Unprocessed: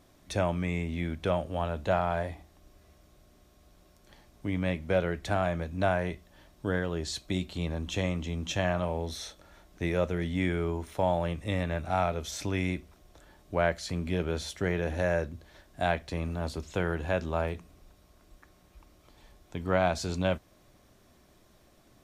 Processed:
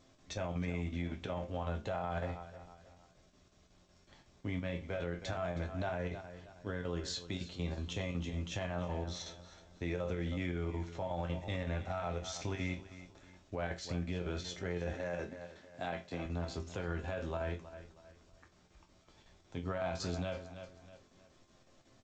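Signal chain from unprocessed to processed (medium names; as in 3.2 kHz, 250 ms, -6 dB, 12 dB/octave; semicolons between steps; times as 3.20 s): square tremolo 5.4 Hz, depth 65%, duty 80%; chord resonator F2 major, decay 0.22 s; feedback delay 317 ms, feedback 36%, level -17 dB; peak limiter -34.5 dBFS, peak gain reduction 10.5 dB; 14.93–16.26 s: high-pass 140 Hz 12 dB/octave; trim +6.5 dB; G.722 64 kbps 16 kHz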